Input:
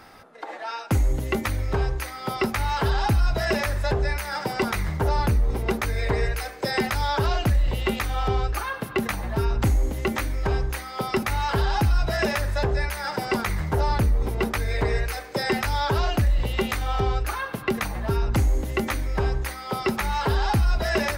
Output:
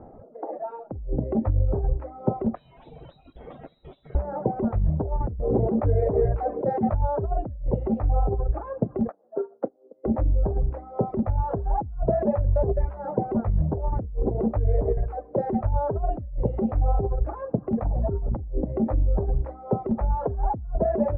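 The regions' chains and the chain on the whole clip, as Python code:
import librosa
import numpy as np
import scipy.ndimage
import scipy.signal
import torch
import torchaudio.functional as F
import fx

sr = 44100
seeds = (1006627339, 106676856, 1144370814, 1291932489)

y = fx.chain(x, sr, fx.lower_of_two(delay_ms=9.6),
    fx.high_shelf(hz=2800.0, db=-9.0),
    fx.freq_invert(carrier_hz=3900), at=(2.55, 4.15))
y = fx.chain(y, sr, fx.highpass(hz=87.0, slope=12),
    fx.env_flatten(amount_pct=50), at=(5.39, 6.94))
y = fx.chain(y, sr, fx.cabinet(low_hz=310.0, low_slope=24, high_hz=3200.0, hz=(330.0, 480.0, 910.0, 1400.0, 2400.0), db=(-4, 5, -6, 6, -8)),
    fx.upward_expand(threshold_db=-37.0, expansion=2.5), at=(9.09, 10.06))
y = fx.dereverb_blind(y, sr, rt60_s=1.0)
y = scipy.signal.sosfilt(scipy.signal.cheby1(3, 1.0, 640.0, 'lowpass', fs=sr, output='sos'), y)
y = fx.over_compress(y, sr, threshold_db=-27.0, ratio=-0.5)
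y = y * 10.0 ** (5.5 / 20.0)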